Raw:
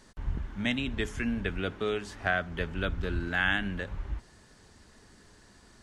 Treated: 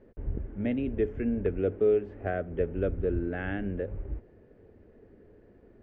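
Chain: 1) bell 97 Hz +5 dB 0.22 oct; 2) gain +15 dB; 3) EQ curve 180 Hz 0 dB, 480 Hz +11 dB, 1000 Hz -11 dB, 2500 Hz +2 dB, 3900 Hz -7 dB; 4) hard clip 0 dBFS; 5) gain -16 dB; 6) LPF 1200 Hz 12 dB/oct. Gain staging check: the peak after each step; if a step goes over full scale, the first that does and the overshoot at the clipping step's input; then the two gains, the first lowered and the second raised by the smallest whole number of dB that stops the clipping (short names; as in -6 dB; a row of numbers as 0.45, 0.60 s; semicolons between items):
-13.0, +2.0, +3.5, 0.0, -16.0, -16.0 dBFS; step 2, 3.5 dB; step 2 +11 dB, step 5 -12 dB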